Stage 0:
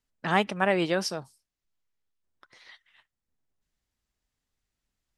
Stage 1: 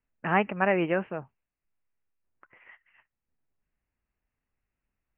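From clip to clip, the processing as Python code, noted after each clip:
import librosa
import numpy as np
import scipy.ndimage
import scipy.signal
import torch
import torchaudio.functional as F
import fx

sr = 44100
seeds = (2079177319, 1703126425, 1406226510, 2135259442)

y = scipy.signal.sosfilt(scipy.signal.butter(16, 2800.0, 'lowpass', fs=sr, output='sos'), x)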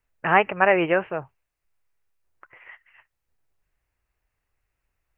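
y = fx.peak_eq(x, sr, hz=220.0, db=-13.0, octaves=0.76)
y = y * librosa.db_to_amplitude(7.5)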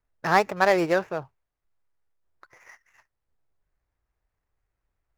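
y = scipy.signal.medfilt(x, 15)
y = y * librosa.db_to_amplitude(-1.0)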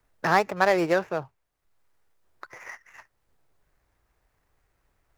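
y = fx.band_squash(x, sr, depth_pct=40)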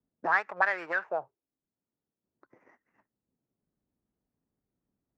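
y = fx.auto_wah(x, sr, base_hz=220.0, top_hz=1600.0, q=3.3, full_db=-18.5, direction='up')
y = y * librosa.db_to_amplitude(2.5)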